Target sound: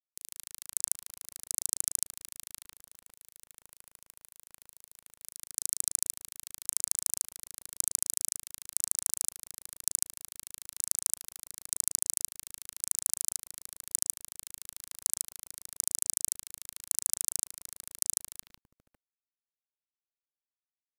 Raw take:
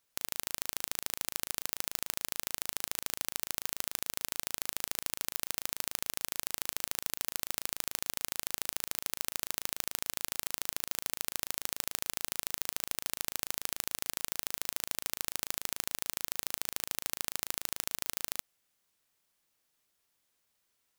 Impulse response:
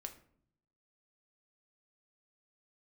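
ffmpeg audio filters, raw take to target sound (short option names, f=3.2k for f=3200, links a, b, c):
-filter_complex "[0:a]bandreject=f=430:w=12,afreqshift=-41,aexciter=amount=3.7:drive=2.8:freq=3.7k,asettb=1/sr,asplit=3[a][b][c];[a]atrim=end=2.594[d];[b]atrim=start=2.59:end=5.22,asetpts=PTS-STARTPTS,afade=t=in:d=0.004:c=qsin,afade=t=out:st=2.626:d=0.004:c=qsin,acompressor=threshold=-26dB:ratio=16[e];[c]atrim=start=5.216[f];[d][e]acrossfade=d=0.004:c1=hsin:c2=qsin[g];[g][f]acrossfade=d=0.004:c1=qsin:c2=hsin,lowpass=f=12k:w=0.5412,lowpass=f=12k:w=1.3066,acrossover=split=570|4000[h][i][j];[i]adelay=150[k];[h]adelay=550[l];[l][k][j]amix=inputs=3:normalize=0,afwtdn=0.02,acrusher=bits=7:dc=4:mix=0:aa=0.000001,equalizer=f=380:w=2:g=-7,volume=1.5dB"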